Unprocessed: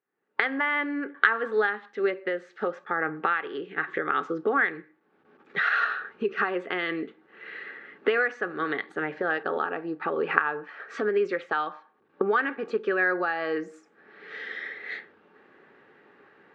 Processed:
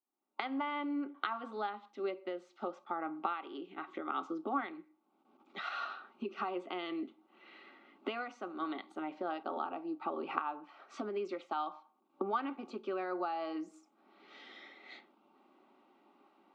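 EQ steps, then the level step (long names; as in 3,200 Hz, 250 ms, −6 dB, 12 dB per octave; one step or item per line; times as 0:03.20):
high-pass filter 200 Hz 24 dB per octave
phaser with its sweep stopped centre 460 Hz, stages 6
−4.5 dB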